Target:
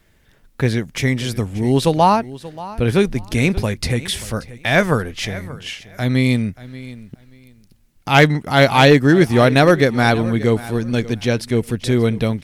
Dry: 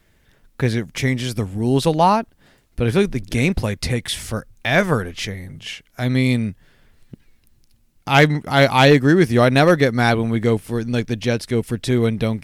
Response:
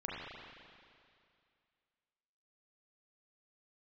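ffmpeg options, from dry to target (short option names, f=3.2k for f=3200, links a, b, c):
-af "aecho=1:1:582|1164:0.133|0.0267,volume=1.5dB"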